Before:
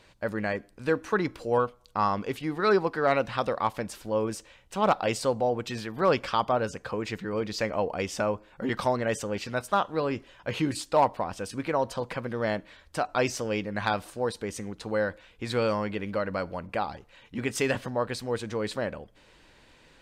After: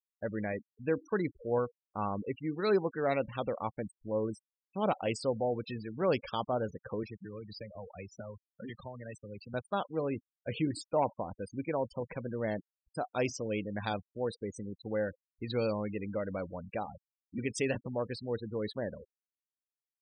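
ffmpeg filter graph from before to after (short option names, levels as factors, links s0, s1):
-filter_complex "[0:a]asettb=1/sr,asplit=3[s0][s1][s2];[s0]atrim=end=7.034[s3];[s1]atrim=start=7.03:end=9.54,asetpts=PTS-STARTPTS,afade=t=in:d=0.004:c=qsin,afade=t=out:st=2.506:d=0.004:c=qsin,highshelf=f=2100:g=11.5,acrossover=split=140|950[s4][s5][s6];[s4]acompressor=threshold=0.00562:ratio=4[s7];[s5]acompressor=threshold=0.00891:ratio=4[s8];[s6]acompressor=threshold=0.00794:ratio=4[s9];[s7][s8][s9]amix=inputs=3:normalize=0,aecho=1:1:454:0.112,atrim=end_sample=110691[s10];[s2]atrim=start=9.536[s11];[s3][s10]acrossfade=d=0.004:c1=hsin:c2=qsin[s12];[s12][s11]acrossfade=d=0.004:c1=qsin:c2=hsin,afftfilt=real='re*gte(hypot(re,im),0.0316)':imag='im*gte(hypot(re,im),0.0316)':win_size=1024:overlap=0.75,equalizer=f=1200:w=1.1:g=-8.5,volume=0.668"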